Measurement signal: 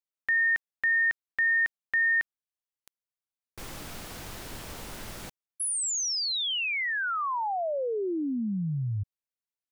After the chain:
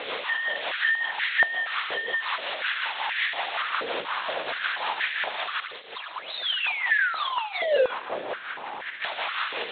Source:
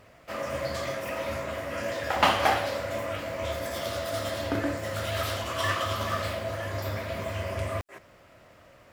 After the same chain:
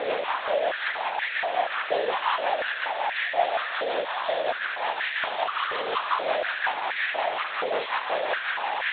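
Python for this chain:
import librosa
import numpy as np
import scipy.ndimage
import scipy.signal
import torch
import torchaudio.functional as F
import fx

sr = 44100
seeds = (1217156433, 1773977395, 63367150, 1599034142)

p1 = fx.delta_mod(x, sr, bps=32000, step_db=-17.5)
p2 = 10.0 ** (-22.5 / 20.0) * (np.abs((p1 / 10.0 ** (-22.5 / 20.0) + 3.0) % 4.0 - 2.0) - 1.0)
p3 = p1 + (p2 * librosa.db_to_amplitude(-9.5))
p4 = fx.rotary(p3, sr, hz=5.5)
p5 = fx.lpc_vocoder(p4, sr, seeds[0], excitation='whisper', order=8)
p6 = p5 + fx.echo_wet_highpass(p5, sr, ms=75, feedback_pct=57, hz=2300.0, wet_db=-9.0, dry=0)
p7 = fx.filter_held_highpass(p6, sr, hz=4.2, low_hz=490.0, high_hz=1800.0)
y = p7 * librosa.db_to_amplitude(-5.5)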